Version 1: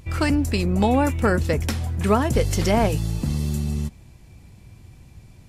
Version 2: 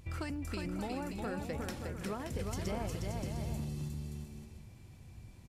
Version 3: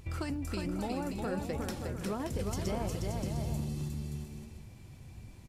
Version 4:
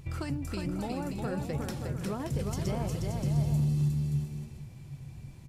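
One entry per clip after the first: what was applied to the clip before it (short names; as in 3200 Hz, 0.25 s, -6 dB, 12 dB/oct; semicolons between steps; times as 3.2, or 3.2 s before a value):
compressor 5:1, threshold -28 dBFS, peak gain reduction 13.5 dB; on a send: bouncing-ball echo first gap 0.36 s, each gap 0.6×, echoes 5; on the sum: gain -9 dB
dynamic EQ 2000 Hz, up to -4 dB, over -57 dBFS, Q 1.1; flange 1.3 Hz, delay 2.2 ms, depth 6.1 ms, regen +79%; gain +8 dB
bell 140 Hz +14.5 dB 0.3 oct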